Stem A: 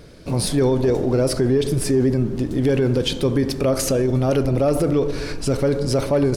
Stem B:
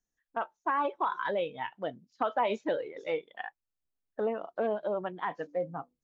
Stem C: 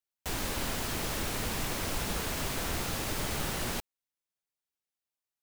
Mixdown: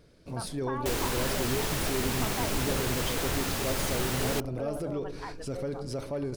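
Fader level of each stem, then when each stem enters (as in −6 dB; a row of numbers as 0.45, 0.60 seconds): −15.0, −8.0, +2.5 decibels; 0.00, 0.00, 0.60 seconds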